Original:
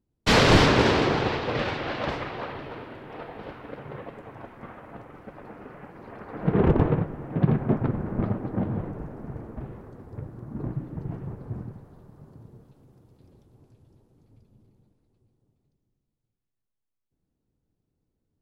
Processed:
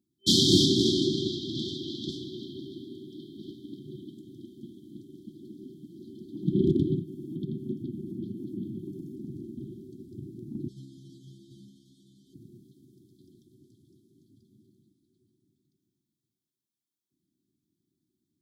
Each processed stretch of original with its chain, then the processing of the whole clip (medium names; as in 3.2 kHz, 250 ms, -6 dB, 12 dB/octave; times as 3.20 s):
6.99–9.16 s: treble shelf 7.6 kHz +7.5 dB + compression 2:1, threshold -31 dBFS + comb of notches 990 Hz
10.68–12.34 s: one-bit delta coder 64 kbps, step -37.5 dBFS + low-pass 3.6 kHz 6 dB/octave + inharmonic resonator 66 Hz, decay 0.79 s, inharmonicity 0.002
whole clip: high-pass 210 Hz 12 dB/octave; FFT band-reject 390–3100 Hz; dynamic bell 280 Hz, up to -3 dB, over -40 dBFS, Q 0.81; trim +4 dB